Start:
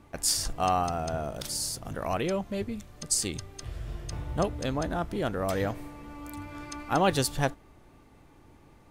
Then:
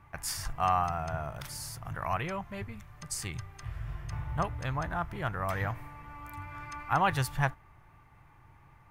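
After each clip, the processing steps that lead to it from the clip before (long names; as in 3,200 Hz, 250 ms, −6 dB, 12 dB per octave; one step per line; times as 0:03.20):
octave-band graphic EQ 125/250/500/1,000/2,000/4,000/8,000 Hz +8/−11/−8/+7/+6/−7/−7 dB
level −3 dB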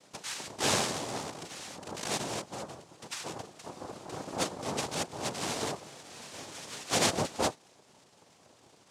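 cochlear-implant simulation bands 2
level −1 dB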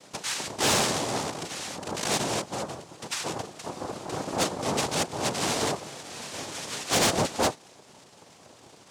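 soft clipping −25.5 dBFS, distortion −12 dB
level +8 dB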